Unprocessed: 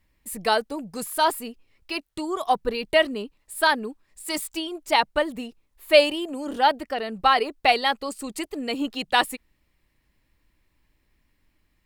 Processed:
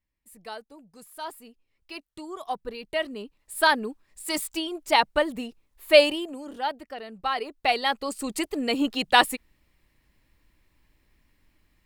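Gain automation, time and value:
1.04 s -17 dB
1.96 s -9.5 dB
2.93 s -9.5 dB
3.59 s 0 dB
6.11 s 0 dB
6.53 s -9.5 dB
7.25 s -9.5 dB
8.28 s +2.5 dB

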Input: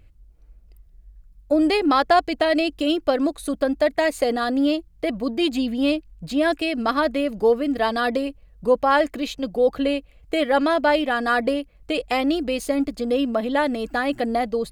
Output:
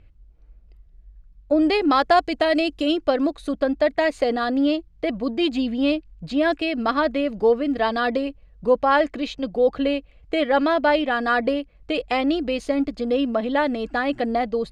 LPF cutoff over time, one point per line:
1.56 s 4100 Hz
2 s 8200 Hz
2.74 s 8200 Hz
3.28 s 4800 Hz

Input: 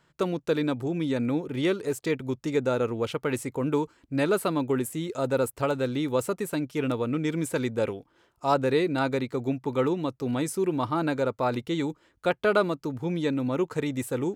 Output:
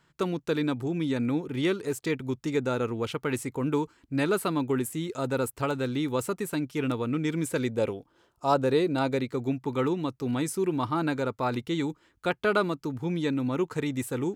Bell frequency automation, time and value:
bell -5.5 dB 0.63 oct
7.4 s 570 Hz
7.97 s 2100 Hz
8.92 s 2100 Hz
9.42 s 570 Hz

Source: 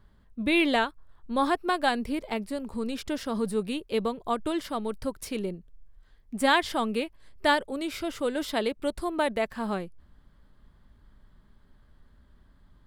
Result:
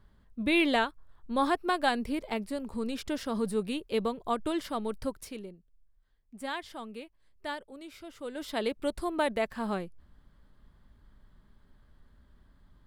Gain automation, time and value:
5.08 s -2 dB
5.54 s -14 dB
8.11 s -14 dB
8.69 s -2 dB

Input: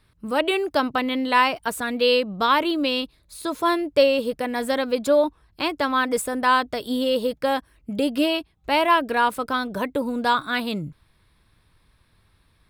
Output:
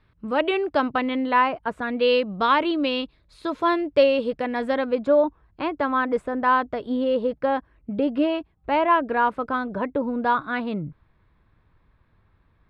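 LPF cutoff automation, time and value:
1.04 s 2700 Hz
1.6 s 1400 Hz
2.16 s 3100 Hz
4.49 s 3100 Hz
5.09 s 1700 Hz

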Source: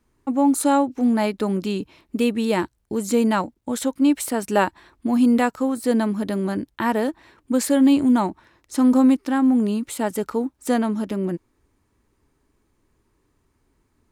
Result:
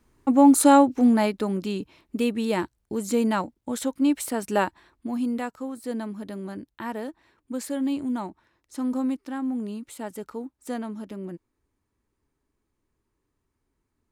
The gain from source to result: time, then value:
0.89 s +3 dB
1.49 s -4 dB
4.57 s -4 dB
5.35 s -11 dB

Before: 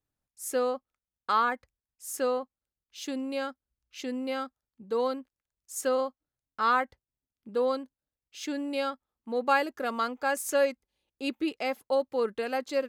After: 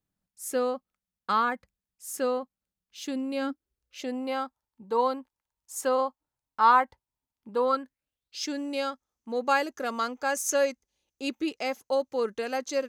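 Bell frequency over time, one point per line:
bell +13.5 dB 0.39 oct
3.27 s 190 Hz
4.26 s 920 Hz
7.54 s 920 Hz
8.51 s 6200 Hz

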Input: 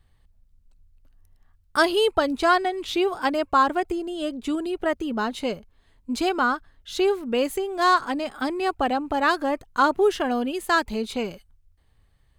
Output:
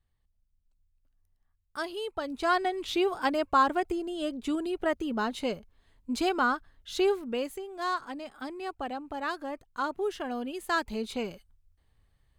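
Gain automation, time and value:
2.07 s -15 dB
2.66 s -4 dB
7.13 s -4 dB
7.57 s -12 dB
9.94 s -12 dB
11.05 s -5.5 dB

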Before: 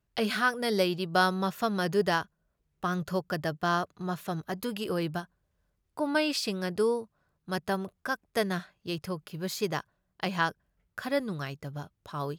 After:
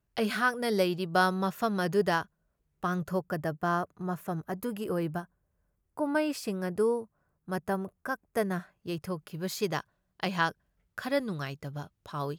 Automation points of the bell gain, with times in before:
bell 3900 Hz 1.3 oct
2.86 s -4.5 dB
3.26 s -14 dB
8.53 s -14 dB
8.94 s -7.5 dB
9.73 s 0 dB

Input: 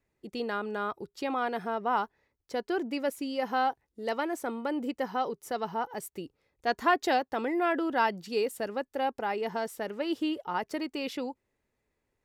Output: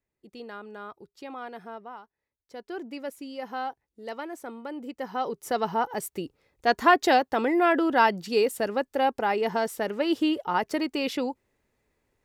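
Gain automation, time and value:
1.76 s -8 dB
2.02 s -18 dB
2.79 s -5 dB
4.86 s -5 dB
5.5 s +6 dB

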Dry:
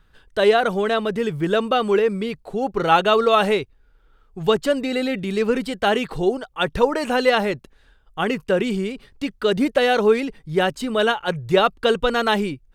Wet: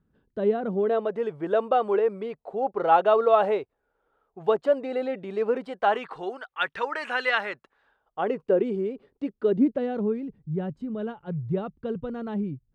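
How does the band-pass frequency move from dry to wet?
band-pass, Q 1.5
0.67 s 220 Hz
1.09 s 670 Hz
5.58 s 670 Hz
6.53 s 1700 Hz
7.37 s 1700 Hz
8.52 s 420 Hz
9.24 s 420 Hz
10.15 s 140 Hz

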